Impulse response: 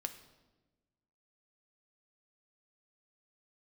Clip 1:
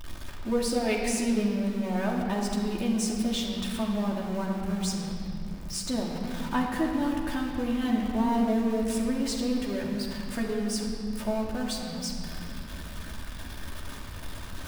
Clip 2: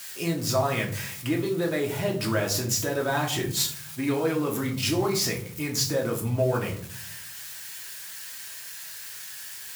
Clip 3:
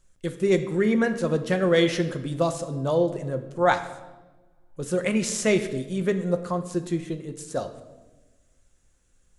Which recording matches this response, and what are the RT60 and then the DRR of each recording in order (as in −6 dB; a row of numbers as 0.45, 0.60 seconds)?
3; non-exponential decay, 0.50 s, 1.2 s; −2.5, −1.0, 7.5 decibels